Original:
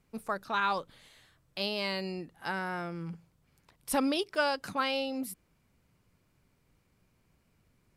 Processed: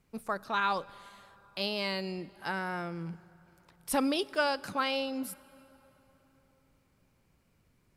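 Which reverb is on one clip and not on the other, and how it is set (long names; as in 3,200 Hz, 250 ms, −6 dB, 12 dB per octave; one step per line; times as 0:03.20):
dense smooth reverb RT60 3.9 s, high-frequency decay 0.65×, DRR 20 dB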